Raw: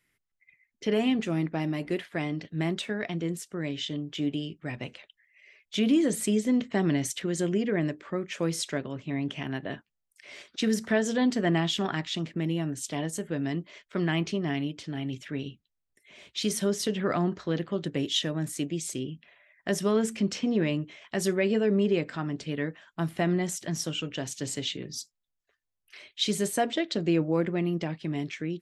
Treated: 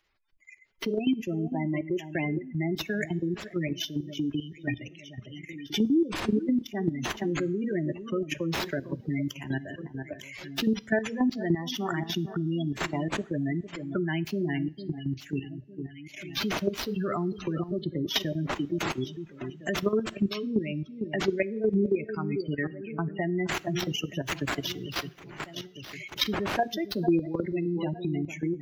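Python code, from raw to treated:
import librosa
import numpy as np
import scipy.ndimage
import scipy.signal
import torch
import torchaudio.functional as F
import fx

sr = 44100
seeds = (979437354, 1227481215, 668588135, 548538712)

y = fx.bin_expand(x, sr, power=1.5)
y = fx.high_shelf(y, sr, hz=6100.0, db=7.5)
y = fx.echo_alternate(y, sr, ms=453, hz=1700.0, feedback_pct=54, wet_db=-12.5)
y = fx.sample_hold(y, sr, seeds[0], rate_hz=9000.0, jitter_pct=20)
y = fx.spec_gate(y, sr, threshold_db=-20, keep='strong')
y = fx.level_steps(y, sr, step_db=13)
y = fx.peak_eq(y, sr, hz=350.0, db=5.0, octaves=0.28)
y = fx.notch(y, sr, hz=490.0, q=12.0)
y = fx.rev_double_slope(y, sr, seeds[1], early_s=0.43, late_s=2.0, knee_db=-22, drr_db=19.0)
y = fx.band_squash(y, sr, depth_pct=70)
y = y * librosa.db_to_amplitude(8.0)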